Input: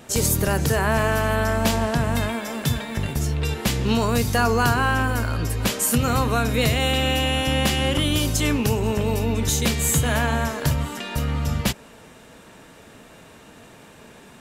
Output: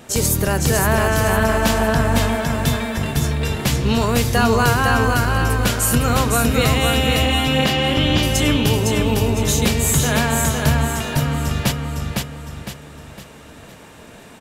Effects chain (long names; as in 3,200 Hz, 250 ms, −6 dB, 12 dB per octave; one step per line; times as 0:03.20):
0:07.22–0:08.23: low-pass filter 5,600 Hz 24 dB per octave
on a send: repeating echo 508 ms, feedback 40%, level −3.5 dB
on the sum: level +2.5 dB